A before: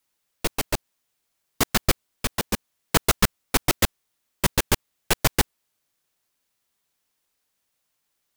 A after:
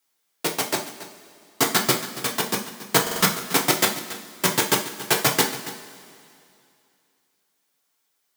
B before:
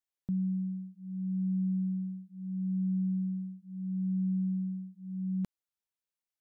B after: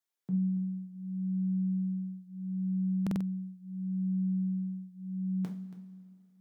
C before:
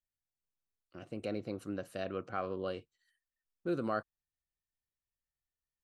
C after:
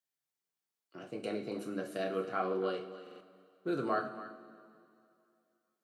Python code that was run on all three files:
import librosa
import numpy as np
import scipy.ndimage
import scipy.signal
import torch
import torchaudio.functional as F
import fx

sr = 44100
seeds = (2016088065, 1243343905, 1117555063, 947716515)

y = scipy.signal.sosfilt(scipy.signal.butter(4, 180.0, 'highpass', fs=sr, output='sos'), x)
y = fx.peak_eq(y, sr, hz=2600.0, db=-3.5, octaves=0.25)
y = fx.notch(y, sr, hz=540.0, q=16.0)
y = y + 10.0 ** (-15.0 / 20.0) * np.pad(y, (int(279 * sr / 1000.0), 0))[:len(y)]
y = fx.rev_double_slope(y, sr, seeds[0], early_s=0.36, late_s=2.6, knee_db=-18, drr_db=0.5)
y = fx.buffer_glitch(y, sr, at_s=(3.02,), block=2048, repeats=3)
y = F.gain(torch.from_numpy(y), 1.0).numpy()